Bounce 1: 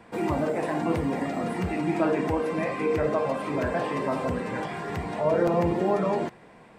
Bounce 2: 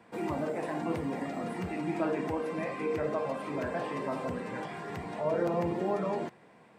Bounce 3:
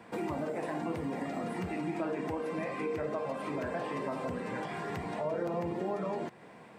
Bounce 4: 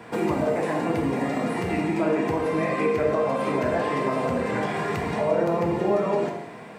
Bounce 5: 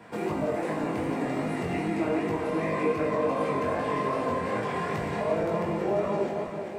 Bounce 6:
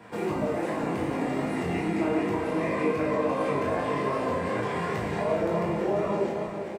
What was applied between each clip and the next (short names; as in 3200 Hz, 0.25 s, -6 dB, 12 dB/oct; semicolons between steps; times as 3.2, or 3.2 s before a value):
HPF 100 Hz; gain -6.5 dB
compressor 2.5:1, threshold -41 dBFS, peak gain reduction 10.5 dB; gain +5.5 dB
non-linear reverb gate 0.32 s falling, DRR 1 dB; gain +8.5 dB
regenerating reverse delay 0.209 s, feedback 75%, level -7.5 dB; chorus 2.6 Hz, delay 18.5 ms, depth 4.8 ms; gain -2.5 dB
doubler 35 ms -5.5 dB